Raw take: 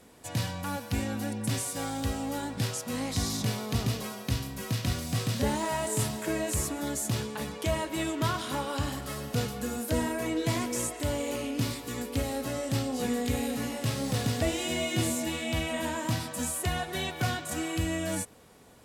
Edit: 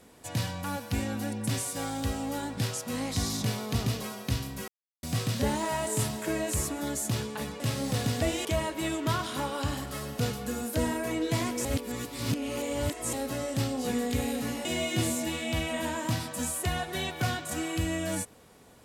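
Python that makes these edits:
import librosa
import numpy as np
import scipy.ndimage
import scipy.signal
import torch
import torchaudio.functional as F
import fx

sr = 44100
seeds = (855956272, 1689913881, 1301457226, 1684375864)

y = fx.edit(x, sr, fx.silence(start_s=4.68, length_s=0.35),
    fx.reverse_span(start_s=10.8, length_s=1.48),
    fx.move(start_s=13.8, length_s=0.85, to_s=7.6), tone=tone)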